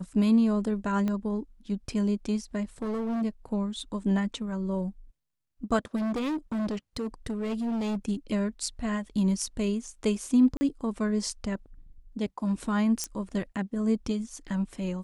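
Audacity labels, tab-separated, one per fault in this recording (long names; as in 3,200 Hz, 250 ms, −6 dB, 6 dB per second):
1.080000	1.080000	click −19 dBFS
2.820000	3.230000	clipping −27.5 dBFS
5.950000	7.970000	clipping −27 dBFS
10.570000	10.610000	drop-out 40 ms
13.040000	13.040000	click −16 dBFS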